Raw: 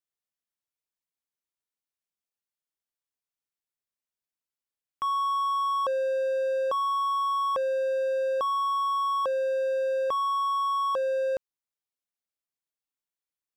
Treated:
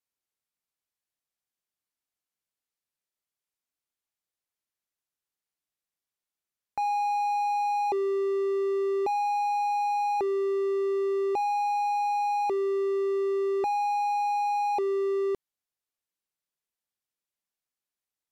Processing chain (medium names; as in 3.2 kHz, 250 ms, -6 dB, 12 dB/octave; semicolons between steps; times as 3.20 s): speed mistake 45 rpm record played at 33 rpm